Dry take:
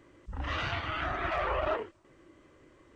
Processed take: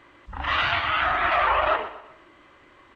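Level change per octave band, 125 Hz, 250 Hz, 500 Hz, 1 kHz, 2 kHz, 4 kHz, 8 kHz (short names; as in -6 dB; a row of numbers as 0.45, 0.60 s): 0.0 dB, +1.0 dB, +5.5 dB, +11.5 dB, +11.5 dB, +11.5 dB, n/a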